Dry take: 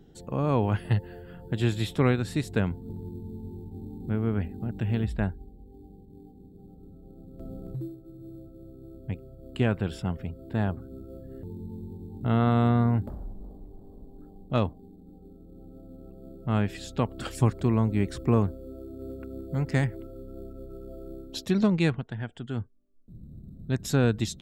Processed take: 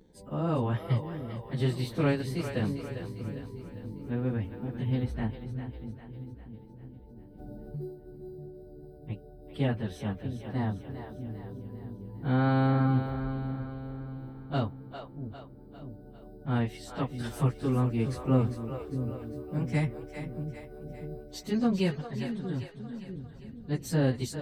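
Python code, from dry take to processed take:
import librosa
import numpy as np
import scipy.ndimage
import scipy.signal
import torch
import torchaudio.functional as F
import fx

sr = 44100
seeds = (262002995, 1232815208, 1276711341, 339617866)

y = fx.pitch_bins(x, sr, semitones=2.0)
y = fx.echo_split(y, sr, split_hz=400.0, low_ms=640, high_ms=401, feedback_pct=52, wet_db=-8.5)
y = y * librosa.db_to_amplitude(-2.0)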